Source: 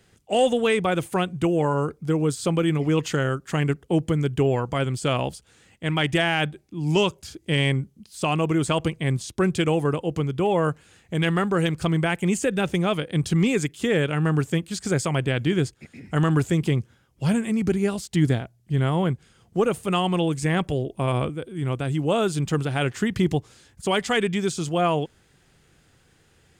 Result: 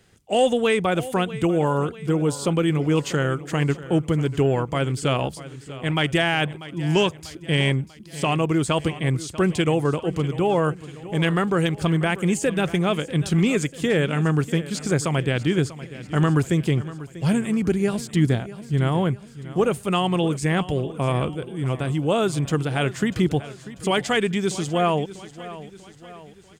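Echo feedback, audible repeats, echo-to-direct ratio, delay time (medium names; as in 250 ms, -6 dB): 50%, 4, -15.0 dB, 642 ms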